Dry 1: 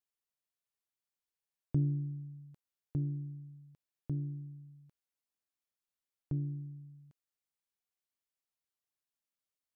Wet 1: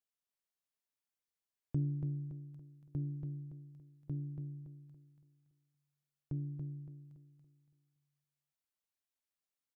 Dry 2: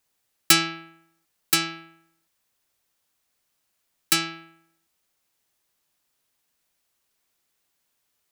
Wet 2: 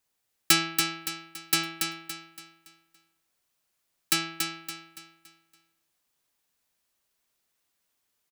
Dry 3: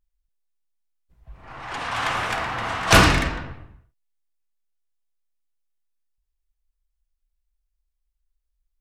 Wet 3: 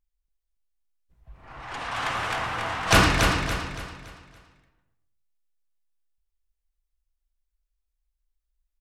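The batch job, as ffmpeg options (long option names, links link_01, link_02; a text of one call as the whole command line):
ffmpeg -i in.wav -af "aecho=1:1:283|566|849|1132|1415:0.562|0.214|0.0812|0.0309|0.0117,volume=-4dB" out.wav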